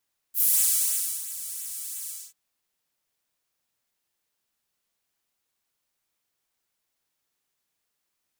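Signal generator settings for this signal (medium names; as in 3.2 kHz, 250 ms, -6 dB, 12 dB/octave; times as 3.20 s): synth patch with pulse-width modulation E4, noise -12 dB, filter highpass, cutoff 6.8 kHz, Q 1.7, filter envelope 1 oct, attack 69 ms, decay 0.82 s, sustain -16 dB, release 0.26 s, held 1.73 s, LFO 2.9 Hz, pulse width 22%, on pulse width 16%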